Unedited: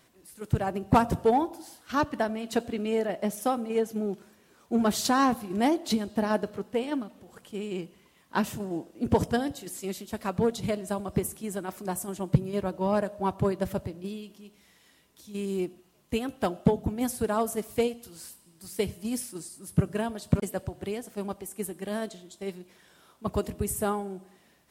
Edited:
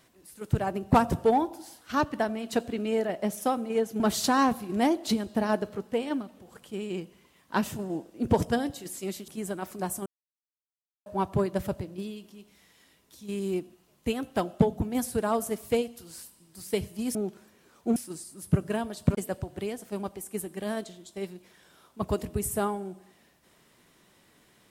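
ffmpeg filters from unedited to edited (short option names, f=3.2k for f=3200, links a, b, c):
-filter_complex "[0:a]asplit=7[a][b][c][d][e][f][g];[a]atrim=end=4.002[h];[b]atrim=start=4.808:end=10.092[i];[c]atrim=start=11.338:end=12.12,asetpts=PTS-STARTPTS,afade=t=out:st=0.778:d=0.004:c=hsin[j];[d]atrim=start=12.12:end=13.12,asetpts=PTS-STARTPTS,volume=0[k];[e]atrim=start=13.12:end=19.212,asetpts=PTS-STARTPTS,afade=t=in:d=0.004:c=hsin[l];[f]atrim=start=3.998:end=4.812[m];[g]atrim=start=19.208[n];[h][i]acrossfade=d=0.004:c1=hsin:c2=hsin[o];[j][k][l]concat=n=3:v=0:a=1[p];[o][p]acrossfade=d=0.004:c1=hsin:c2=hsin[q];[q][m]acrossfade=d=0.004:c1=hsin:c2=hsin[r];[r][n]acrossfade=d=0.004:c1=hsin:c2=hsin"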